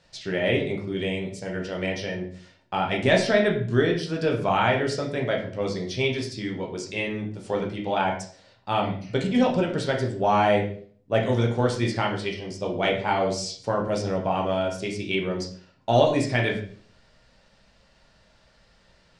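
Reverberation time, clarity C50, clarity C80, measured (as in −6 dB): 0.50 s, 7.5 dB, 11.5 dB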